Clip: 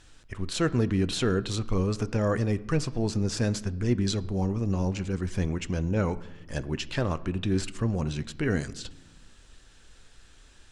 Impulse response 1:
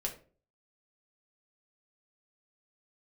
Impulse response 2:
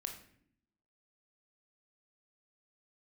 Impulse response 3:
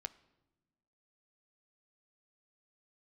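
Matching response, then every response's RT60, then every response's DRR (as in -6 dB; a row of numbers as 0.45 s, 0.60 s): 3; 0.40 s, 0.65 s, no single decay rate; 0.0 dB, 3.5 dB, 13.0 dB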